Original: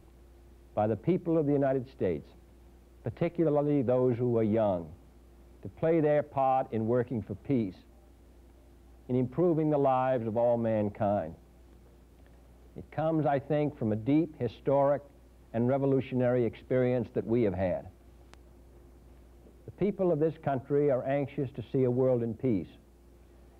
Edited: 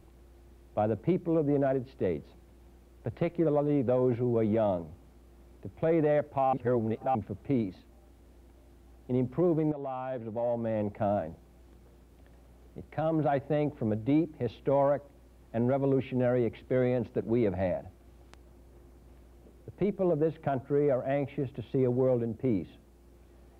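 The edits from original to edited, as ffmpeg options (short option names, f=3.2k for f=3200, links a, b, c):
-filter_complex "[0:a]asplit=4[a][b][c][d];[a]atrim=end=6.532[e];[b]atrim=start=6.528:end=7.152,asetpts=PTS-STARTPTS,areverse[f];[c]atrim=start=7.148:end=9.72,asetpts=PTS-STARTPTS,afade=t=out:st=2.568:d=0.004:c=hsin:silence=0.211349[g];[d]atrim=start=9.72,asetpts=PTS-STARTPTS,afade=t=in:d=1.41:silence=0.211349[h];[e][f]acrossfade=d=0.004:c1=hsin:c2=hsin[i];[g][h]concat=n=2:v=0:a=1[j];[i][j]acrossfade=d=0.004:c1=hsin:c2=hsin"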